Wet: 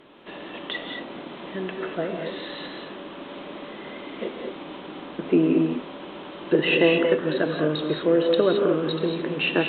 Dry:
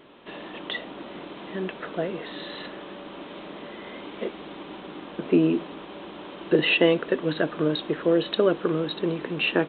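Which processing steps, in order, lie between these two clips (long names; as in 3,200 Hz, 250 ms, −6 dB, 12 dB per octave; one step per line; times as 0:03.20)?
treble cut that deepens with the level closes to 2,900 Hz, closed at −17 dBFS
reverb whose tail is shaped and stops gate 250 ms rising, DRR 3 dB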